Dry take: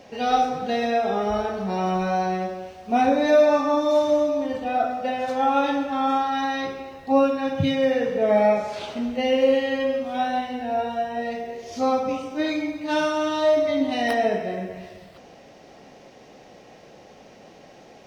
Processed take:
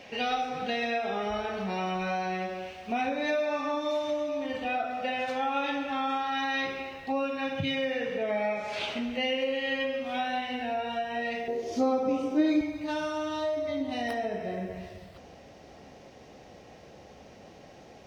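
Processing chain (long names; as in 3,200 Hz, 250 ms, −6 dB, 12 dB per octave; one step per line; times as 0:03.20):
downward compressor 3 to 1, threshold −27 dBFS, peak gain reduction 11 dB
parametric band 2,500 Hz +11 dB 1.3 octaves, from 0:11.48 350 Hz, from 0:12.61 71 Hz
level −3.5 dB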